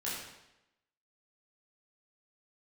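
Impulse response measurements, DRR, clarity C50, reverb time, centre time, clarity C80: −8.5 dB, 0.5 dB, 0.90 s, 69 ms, 3.5 dB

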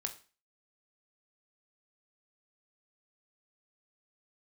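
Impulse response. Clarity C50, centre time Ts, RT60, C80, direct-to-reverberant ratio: 12.5 dB, 10 ms, 0.35 s, 18.0 dB, 5.0 dB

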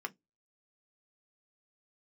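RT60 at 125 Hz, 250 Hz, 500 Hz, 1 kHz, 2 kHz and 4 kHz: 0.25, 0.20, 0.20, 0.15, 0.10, 0.15 seconds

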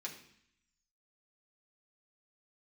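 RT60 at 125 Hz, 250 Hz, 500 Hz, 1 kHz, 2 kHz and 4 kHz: 0.95, 0.90, 0.60, 0.70, 0.85, 0.80 seconds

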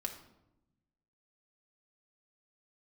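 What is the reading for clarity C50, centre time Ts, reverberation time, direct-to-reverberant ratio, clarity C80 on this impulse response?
9.0 dB, 16 ms, 0.90 s, 2.0 dB, 12.0 dB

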